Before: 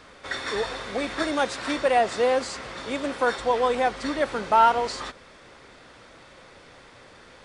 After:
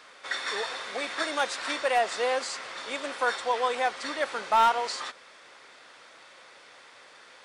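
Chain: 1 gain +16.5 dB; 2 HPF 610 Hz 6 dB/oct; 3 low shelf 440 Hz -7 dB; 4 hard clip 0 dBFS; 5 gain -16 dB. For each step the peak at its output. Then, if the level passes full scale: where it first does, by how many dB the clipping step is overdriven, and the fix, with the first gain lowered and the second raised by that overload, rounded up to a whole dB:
+9.0, +8.0, +7.0, 0.0, -16.0 dBFS; step 1, 7.0 dB; step 1 +9.5 dB, step 5 -9 dB

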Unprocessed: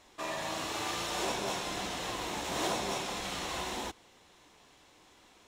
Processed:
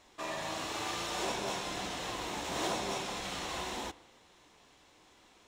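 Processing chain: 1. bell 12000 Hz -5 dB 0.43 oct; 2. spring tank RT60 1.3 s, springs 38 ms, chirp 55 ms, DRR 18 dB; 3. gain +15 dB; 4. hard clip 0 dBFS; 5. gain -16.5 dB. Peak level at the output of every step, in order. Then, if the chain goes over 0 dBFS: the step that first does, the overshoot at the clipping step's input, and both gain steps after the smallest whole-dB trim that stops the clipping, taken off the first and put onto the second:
-19.5, -19.5, -4.5, -4.5, -21.0 dBFS; no overload

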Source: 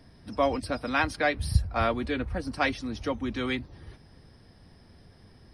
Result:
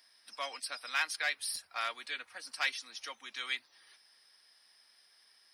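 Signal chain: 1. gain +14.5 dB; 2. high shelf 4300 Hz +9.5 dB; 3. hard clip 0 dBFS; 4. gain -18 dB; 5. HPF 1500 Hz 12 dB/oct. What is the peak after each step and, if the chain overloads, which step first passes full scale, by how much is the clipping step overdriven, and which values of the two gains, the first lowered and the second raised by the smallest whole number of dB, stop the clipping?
+5.0, +5.5, 0.0, -18.0, -17.0 dBFS; step 1, 5.5 dB; step 1 +8.5 dB, step 4 -12 dB

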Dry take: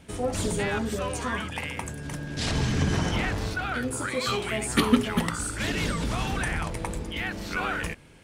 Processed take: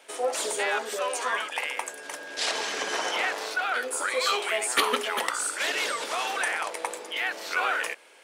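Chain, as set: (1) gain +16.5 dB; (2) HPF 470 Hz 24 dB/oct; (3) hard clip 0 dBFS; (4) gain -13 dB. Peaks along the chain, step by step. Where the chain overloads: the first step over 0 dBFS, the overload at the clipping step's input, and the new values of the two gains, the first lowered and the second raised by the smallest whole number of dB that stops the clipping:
+8.5, +6.5, 0.0, -13.0 dBFS; step 1, 6.5 dB; step 1 +9.5 dB, step 4 -6 dB

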